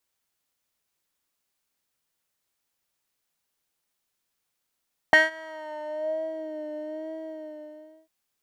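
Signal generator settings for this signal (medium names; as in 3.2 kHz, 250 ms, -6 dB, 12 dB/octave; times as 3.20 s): synth patch with vibrato D#5, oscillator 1 square, interval 0 st, oscillator 2 level -17 dB, sub -3.5 dB, noise -19.5 dB, filter bandpass, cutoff 440 Hz, Q 3.6, filter envelope 2 oct, filter decay 1.31 s, filter sustain 0%, attack 1 ms, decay 0.17 s, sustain -23.5 dB, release 1.03 s, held 1.92 s, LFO 1.1 Hz, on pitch 44 cents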